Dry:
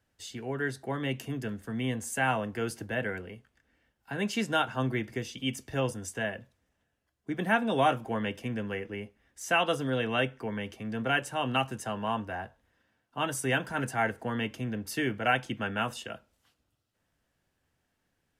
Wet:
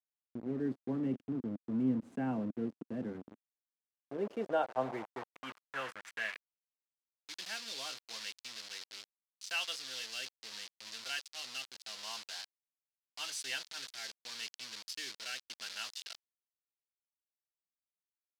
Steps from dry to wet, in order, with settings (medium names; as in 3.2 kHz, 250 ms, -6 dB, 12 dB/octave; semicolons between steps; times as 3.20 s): rotary cabinet horn 0.8 Hz; bit crusher 6-bit; band-pass sweep 250 Hz -> 4.6 kHz, 3.52–7.27 s; trim +4 dB